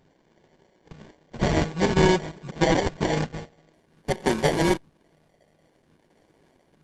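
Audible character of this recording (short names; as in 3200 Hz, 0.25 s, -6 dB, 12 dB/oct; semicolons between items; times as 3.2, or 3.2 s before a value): a buzz of ramps at a fixed pitch in blocks of 16 samples; phasing stages 12, 0.51 Hz, lowest notch 320–1200 Hz; aliases and images of a low sample rate 1300 Hz, jitter 0%; Opus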